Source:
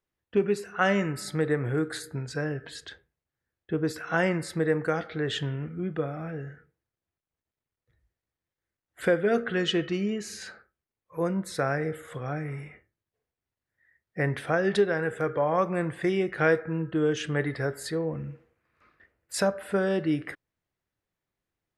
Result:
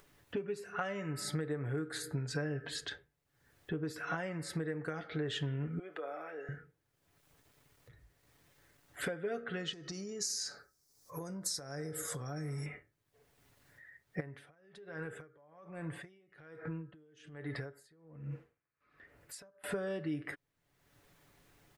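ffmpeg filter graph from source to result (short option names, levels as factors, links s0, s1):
-filter_complex "[0:a]asettb=1/sr,asplit=3[s0][s1][s2];[s0]atrim=end=5.794[s3];[s1]atrim=start=5.79:end=6.49,asetpts=PTS-STARTPTS,afade=t=in:d=0.004:c=qsin,afade=t=out:st=0.696:d=0.004:c=qsin,highpass=f=410:w=0.5412,highpass=f=410:w=1.3066,acompressor=threshold=0.00501:ratio=2:attack=3.2:release=140:knee=1:detection=peak[s4];[s2]atrim=start=6.486[s5];[s3][s4]acrossfade=d=0.004:c1=hsin:c2=qsin[s6];[s6][s5]acrossfade=d=0.004:c1=qsin:c2=hsin,asettb=1/sr,asplit=3[s7][s8][s9];[s7]atrim=end=9.734[s10];[s8]atrim=start=9.73:end=12.66,asetpts=PTS-STARTPTS,afade=t=in:d=0.004:c=qsin,afade=t=out:st=2.926:d=0.004:c=qsin,acompressor=threshold=0.0112:ratio=8:attack=3.2:release=140:knee=1:detection=peak,highshelf=f=3900:t=q:w=3:g=11.5[s11];[s9]atrim=start=12.656[s12];[s10][s11]acrossfade=d=0.004:c1=hsin:c2=qsin[s13];[s13][s12]acrossfade=d=0.004:c1=qsin:c2=hsin,asettb=1/sr,asplit=3[s14][s15][s16];[s14]atrim=end=14.204[s17];[s15]atrim=start=14.2:end=19.64,asetpts=PTS-STARTPTS,afade=t=in:d=0.004:c=qsin,afade=t=out:st=5.436:d=0.004:c=qsin,acompressor=threshold=0.0141:ratio=12:attack=3.2:release=140:knee=1:detection=peak,aeval=exprs='val(0)*pow(10,-31*(0.5-0.5*cos(2*PI*1.2*n/s))/20)':c=same[s18];[s16]atrim=start=19.636[s19];[s17][s18]acrossfade=d=0.004:c1=hsin:c2=qsin[s20];[s20][s19]acrossfade=d=0.004:c1=qsin:c2=hsin,acompressor=threshold=0.0158:ratio=12,aecho=1:1:7:0.42,acompressor=mode=upward:threshold=0.00316:ratio=2.5,volume=1.12"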